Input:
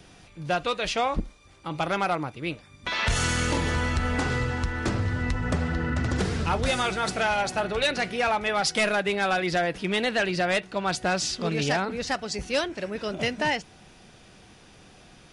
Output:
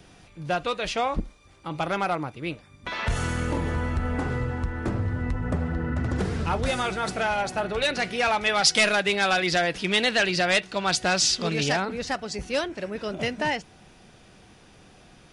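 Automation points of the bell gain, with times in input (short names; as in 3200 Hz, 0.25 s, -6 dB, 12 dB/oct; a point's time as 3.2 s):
bell 5100 Hz 2.6 oct
2.51 s -2 dB
3.46 s -13.5 dB
5.83 s -13.5 dB
6.5 s -3.5 dB
7.62 s -3.5 dB
8.48 s +7.5 dB
11.32 s +7.5 dB
12.12 s -2.5 dB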